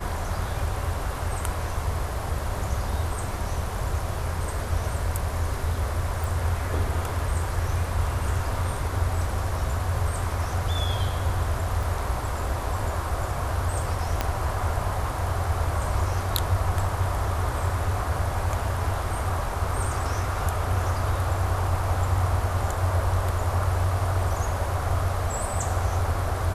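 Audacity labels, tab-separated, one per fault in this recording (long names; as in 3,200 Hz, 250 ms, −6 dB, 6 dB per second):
6.240000	6.240000	click
11.830000	11.830000	drop-out 2.5 ms
14.210000	14.210000	click −9 dBFS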